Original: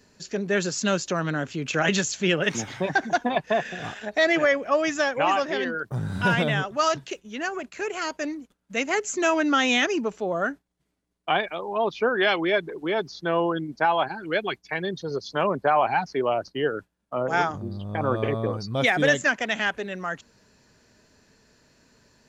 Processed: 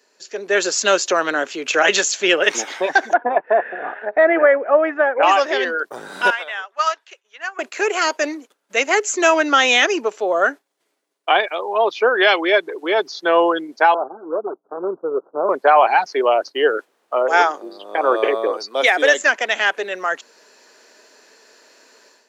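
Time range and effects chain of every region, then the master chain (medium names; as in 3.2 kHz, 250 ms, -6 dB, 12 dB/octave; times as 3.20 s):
3.13–5.23 s: low-pass 1.7 kHz 24 dB/octave + band-stop 1.1 kHz
6.30–7.59 s: high-pass 1.1 kHz + treble shelf 3 kHz -12 dB + upward expansion, over -46 dBFS
13.94–15.49 s: median filter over 41 samples + steep low-pass 1.4 kHz 96 dB/octave
16.77–19.13 s: high-pass 270 Hz 24 dB/octave + added noise brown -61 dBFS
whole clip: high-pass 370 Hz 24 dB/octave; level rider gain up to 11.5 dB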